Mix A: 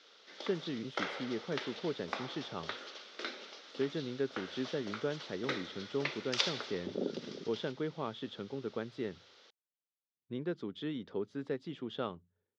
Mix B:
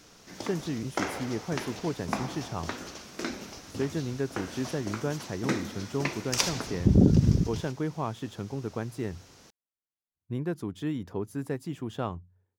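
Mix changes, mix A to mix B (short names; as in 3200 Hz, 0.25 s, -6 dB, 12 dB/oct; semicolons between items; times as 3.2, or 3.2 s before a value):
background: remove HPF 500 Hz 12 dB/oct; master: remove speaker cabinet 270–4200 Hz, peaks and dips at 310 Hz -5 dB, 720 Hz -9 dB, 1000 Hz -9 dB, 1700 Hz -4 dB, 2500 Hz -5 dB, 3500 Hz +5 dB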